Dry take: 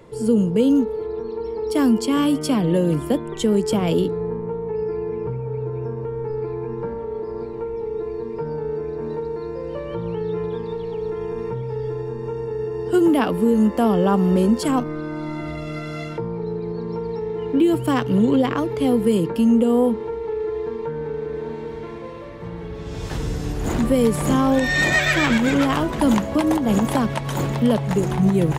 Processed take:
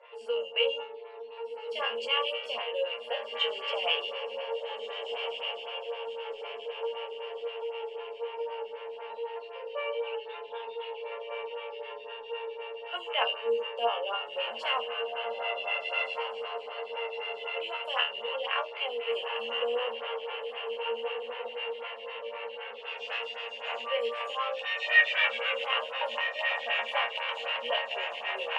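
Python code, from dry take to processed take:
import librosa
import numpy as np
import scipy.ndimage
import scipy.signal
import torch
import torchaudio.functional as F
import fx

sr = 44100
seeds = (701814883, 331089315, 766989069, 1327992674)

p1 = scipy.signal.sosfilt(scipy.signal.ellip(4, 1.0, 40, 510.0, 'highpass', fs=sr, output='sos'), x)
p2 = fx.rider(p1, sr, range_db=4, speed_s=2.0)
p3 = fx.lowpass_res(p2, sr, hz=2800.0, q=14.0)
p4 = fx.resonator_bank(p3, sr, root=39, chord='fifth', decay_s=0.32)
p5 = p4 + fx.echo_diffused(p4, sr, ms=1558, feedback_pct=46, wet_db=-5.5, dry=0)
p6 = fx.stagger_phaser(p5, sr, hz=3.9)
y = p6 * librosa.db_to_amplitude(5.0)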